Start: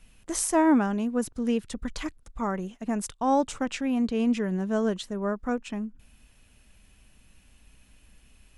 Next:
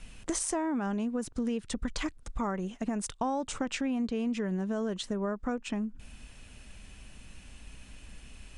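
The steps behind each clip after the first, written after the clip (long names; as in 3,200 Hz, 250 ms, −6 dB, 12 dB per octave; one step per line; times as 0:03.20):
Butterworth low-pass 10,000 Hz 72 dB per octave
brickwall limiter −19.5 dBFS, peak gain reduction 7.5 dB
downward compressor 4 to 1, threshold −39 dBFS, peak gain reduction 13.5 dB
level +8 dB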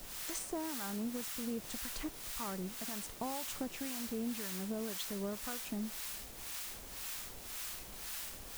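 bit-depth reduction 6 bits, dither triangular
two-band tremolo in antiphase 1.9 Hz, depth 70%, crossover 790 Hz
level −6 dB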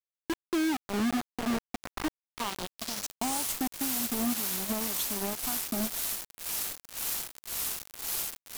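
low-pass filter sweep 390 Hz → 13,000 Hz, 0:01.15–0:03.55
phaser with its sweep stopped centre 490 Hz, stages 6
log-companded quantiser 2 bits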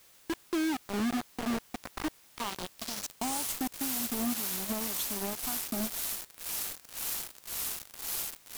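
converter with a step at zero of −45 dBFS
level −2.5 dB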